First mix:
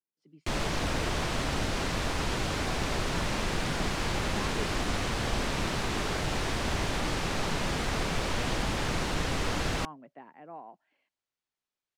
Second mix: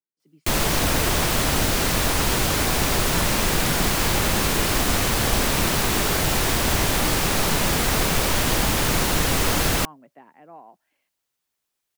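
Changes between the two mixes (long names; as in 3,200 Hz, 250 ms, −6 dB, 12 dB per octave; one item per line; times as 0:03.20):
background +8.0 dB
master: remove high-frequency loss of the air 77 metres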